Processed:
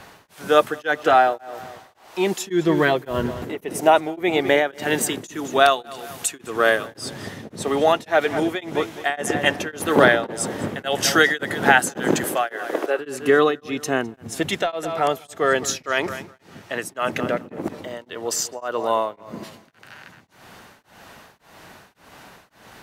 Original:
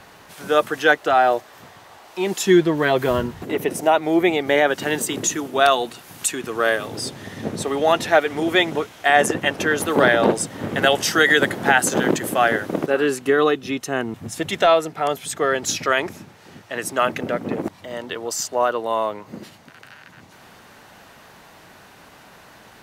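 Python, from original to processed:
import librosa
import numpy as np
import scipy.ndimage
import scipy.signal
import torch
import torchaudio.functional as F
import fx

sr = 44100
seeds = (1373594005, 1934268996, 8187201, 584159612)

p1 = fx.highpass(x, sr, hz=360.0, slope=24, at=(12.24, 12.99))
p2 = p1 + fx.echo_filtered(p1, sr, ms=208, feedback_pct=33, hz=4700.0, wet_db=-15, dry=0)
p3 = p2 * np.abs(np.cos(np.pi * 1.8 * np.arange(len(p2)) / sr))
y = p3 * librosa.db_to_amplitude(2.0)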